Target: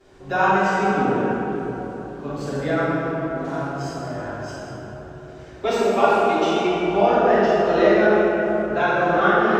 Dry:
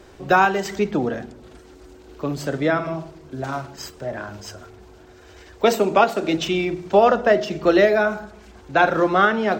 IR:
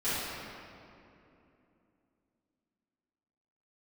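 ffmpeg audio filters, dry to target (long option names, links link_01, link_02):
-filter_complex "[0:a]asettb=1/sr,asplit=3[link_01][link_02][link_03];[link_01]atrim=end=5.734[link_04];[link_02]atrim=start=5.73:end=6.64,asetpts=PTS-STARTPTS,afade=type=in:duration=0.004:curve=qsin,afade=type=out:start_time=0.906:duration=0.004:curve=qsin,highpass=200[link_05];[link_03]atrim=start=6.636[link_06];[link_04][link_05]acrossfade=duration=0.004:curve1=hsin:curve2=qsin[link_07];[link_07][link_06]acrossfade=duration=0.004:curve1=qsin:curve2=hsin[link_08];[1:a]atrim=start_sample=2205,asetrate=26019,aresample=44100[link_09];[link_08][link_09]afir=irnorm=-1:irlink=0,volume=-13.5dB"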